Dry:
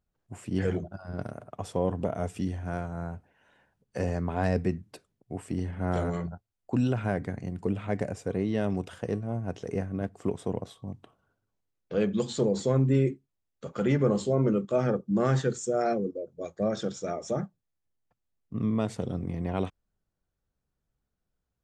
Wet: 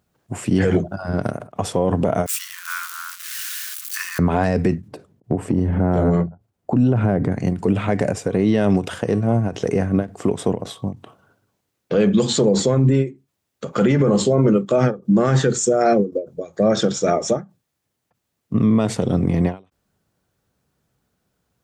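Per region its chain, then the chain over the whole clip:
0:02.26–0:04.19: spike at every zero crossing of −33.5 dBFS + Butterworth high-pass 1,100 Hz 72 dB per octave
0:04.88–0:07.32: tilt shelving filter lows +8 dB, about 1,200 Hz + downward compressor 4 to 1, threshold −29 dBFS
whole clip: high-pass filter 97 Hz 12 dB per octave; boost into a limiter +23 dB; every ending faded ahead of time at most 220 dB per second; level −7 dB

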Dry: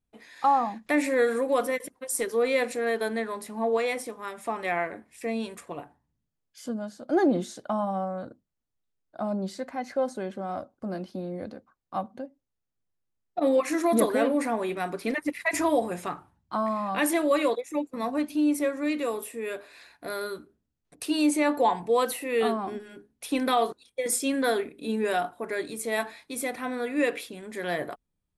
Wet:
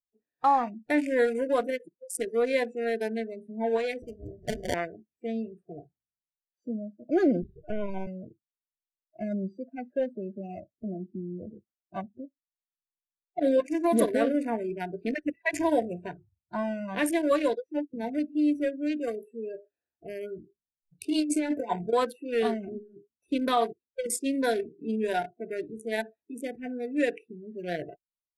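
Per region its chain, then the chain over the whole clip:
0:04.02–0:04.74: mains-hum notches 60/120/180/240 Hz + sample-rate reduction 1,300 Hz
0:07.42–0:08.07: spike at every zero crossing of −28.5 dBFS + linear-prediction vocoder at 8 kHz pitch kept + one half of a high-frequency compander decoder only
0:20.36–0:21.93: compressor whose output falls as the input rises −25 dBFS, ratio −0.5 + double-tracking delay 23 ms −11 dB
whole clip: adaptive Wiener filter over 41 samples; noise reduction from a noise print of the clip's start 29 dB; low-pass filter 11,000 Hz 12 dB per octave

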